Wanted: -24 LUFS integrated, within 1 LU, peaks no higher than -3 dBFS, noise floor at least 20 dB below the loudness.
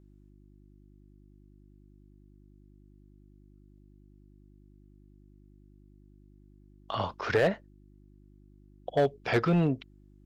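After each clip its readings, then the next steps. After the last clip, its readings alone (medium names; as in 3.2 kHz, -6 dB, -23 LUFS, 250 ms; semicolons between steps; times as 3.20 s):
clipped samples 0.3%; clipping level -18.0 dBFS; hum 50 Hz; highest harmonic 350 Hz; hum level -55 dBFS; loudness -29.0 LUFS; peak level -18.0 dBFS; loudness target -24.0 LUFS
-> clip repair -18 dBFS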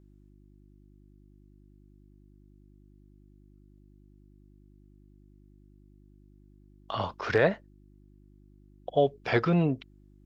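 clipped samples 0.0%; hum 50 Hz; highest harmonic 550 Hz; hum level -54 dBFS
-> de-hum 50 Hz, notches 11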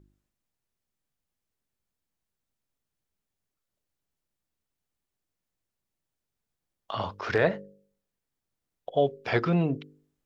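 hum not found; loudness -28.0 LUFS; peak level -8.0 dBFS; loudness target -24.0 LUFS
-> trim +4 dB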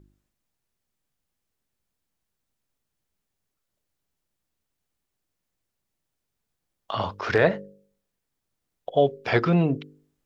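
loudness -24.0 LUFS; peak level -4.0 dBFS; noise floor -82 dBFS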